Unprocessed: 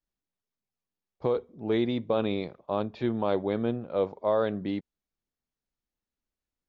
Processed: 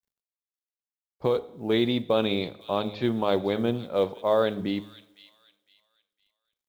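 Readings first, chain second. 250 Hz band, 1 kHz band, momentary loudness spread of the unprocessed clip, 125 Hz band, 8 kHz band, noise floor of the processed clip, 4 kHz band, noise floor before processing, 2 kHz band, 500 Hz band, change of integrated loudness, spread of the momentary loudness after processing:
+2.5 dB, +3.0 dB, 6 LU, +2.0 dB, n/a, under -85 dBFS, +9.5 dB, under -85 dBFS, +5.5 dB, +2.5 dB, +3.0 dB, 6 LU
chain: de-hum 104.2 Hz, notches 8; dynamic EQ 3600 Hz, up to +7 dB, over -51 dBFS, Q 1; companded quantiser 8-bit; thin delay 0.508 s, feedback 31%, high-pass 3300 Hz, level -9 dB; two-slope reverb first 0.71 s, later 1.9 s, from -16 dB, DRR 16.5 dB; gain +2.5 dB

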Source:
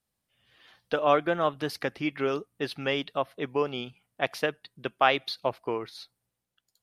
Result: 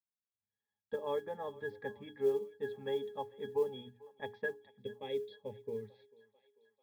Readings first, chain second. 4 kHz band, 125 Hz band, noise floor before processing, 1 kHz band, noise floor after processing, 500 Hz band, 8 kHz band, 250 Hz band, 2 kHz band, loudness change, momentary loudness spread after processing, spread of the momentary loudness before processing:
-18.0 dB, -13.5 dB, -84 dBFS, -17.5 dB, under -85 dBFS, -7.5 dB, under -15 dB, -15.0 dB, -14.5 dB, -10.5 dB, 12 LU, 13 LU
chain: spectral gain 4.78–5.83, 620–1900 Hz -15 dB; air absorption 150 m; notches 60/120/180/240/300/360/420 Hz; dynamic EQ 610 Hz, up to +4 dB, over -35 dBFS, Q 1.5; octave resonator G#, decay 0.13 s; modulation noise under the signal 34 dB; gate with hold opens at -58 dBFS; thinning echo 0.443 s, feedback 64%, high-pass 410 Hz, level -21 dB; gain +1.5 dB

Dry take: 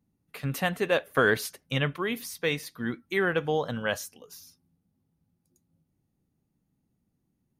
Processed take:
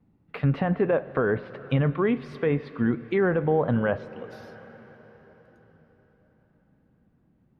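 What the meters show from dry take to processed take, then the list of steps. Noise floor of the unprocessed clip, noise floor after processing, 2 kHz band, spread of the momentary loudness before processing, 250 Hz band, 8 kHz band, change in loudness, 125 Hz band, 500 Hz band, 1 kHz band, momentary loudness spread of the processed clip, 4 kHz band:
-77 dBFS, -65 dBFS, -4.5 dB, 16 LU, +7.5 dB, under -25 dB, +3.0 dB, +7.5 dB, +4.0 dB, +0.5 dB, 17 LU, -12.0 dB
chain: treble ducked by the level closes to 1900 Hz, closed at -23 dBFS; tilt shelf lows +5 dB, about 1500 Hz; limiter -19 dBFS, peak gain reduction 9.5 dB; vibrato 0.66 Hz 28 cents; air absorption 410 m; plate-style reverb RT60 4.7 s, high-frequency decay 0.9×, DRR 16.5 dB; mismatched tape noise reduction encoder only; gain +6 dB

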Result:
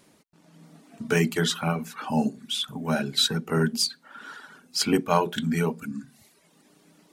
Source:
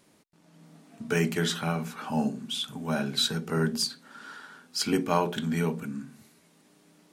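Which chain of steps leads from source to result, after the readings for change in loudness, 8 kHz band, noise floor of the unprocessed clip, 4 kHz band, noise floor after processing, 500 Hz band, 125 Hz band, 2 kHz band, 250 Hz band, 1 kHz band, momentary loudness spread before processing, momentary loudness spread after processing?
+3.0 dB, +3.5 dB, -62 dBFS, +3.5 dB, -61 dBFS, +3.0 dB, +2.5 dB, +3.0 dB, +2.5 dB, +3.5 dB, 18 LU, 18 LU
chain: reverb removal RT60 0.79 s; gain +4 dB

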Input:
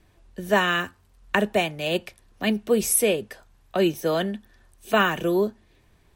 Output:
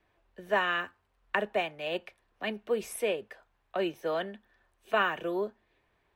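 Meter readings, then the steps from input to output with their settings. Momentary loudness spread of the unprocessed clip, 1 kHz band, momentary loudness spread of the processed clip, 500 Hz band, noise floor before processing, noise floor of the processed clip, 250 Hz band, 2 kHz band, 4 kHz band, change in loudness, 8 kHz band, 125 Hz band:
10 LU, -6.0 dB, 11 LU, -7.5 dB, -60 dBFS, -74 dBFS, -13.0 dB, -6.0 dB, -9.0 dB, -8.5 dB, -20.0 dB, -16.0 dB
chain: added harmonics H 2 -21 dB, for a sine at -3.5 dBFS; three-band isolator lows -12 dB, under 390 Hz, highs -15 dB, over 3300 Hz; gain -5.5 dB

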